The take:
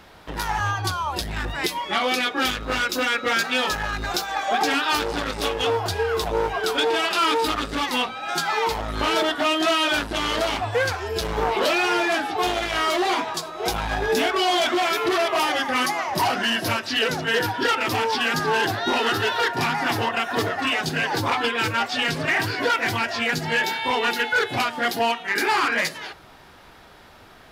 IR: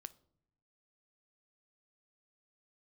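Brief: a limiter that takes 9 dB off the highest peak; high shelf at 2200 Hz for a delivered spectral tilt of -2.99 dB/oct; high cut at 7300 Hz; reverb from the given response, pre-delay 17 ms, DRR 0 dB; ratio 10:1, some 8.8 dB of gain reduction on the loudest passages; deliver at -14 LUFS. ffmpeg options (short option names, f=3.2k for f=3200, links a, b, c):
-filter_complex "[0:a]lowpass=7.3k,highshelf=f=2.2k:g=6.5,acompressor=threshold=-24dB:ratio=10,alimiter=limit=-19.5dB:level=0:latency=1,asplit=2[a][b];[1:a]atrim=start_sample=2205,adelay=17[c];[b][c]afir=irnorm=-1:irlink=0,volume=6dB[d];[a][d]amix=inputs=2:normalize=0,volume=11dB"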